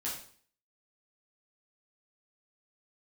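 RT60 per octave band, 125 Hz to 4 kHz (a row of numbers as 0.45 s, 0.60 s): 0.50 s, 0.55 s, 0.50 s, 0.50 s, 0.50 s, 0.50 s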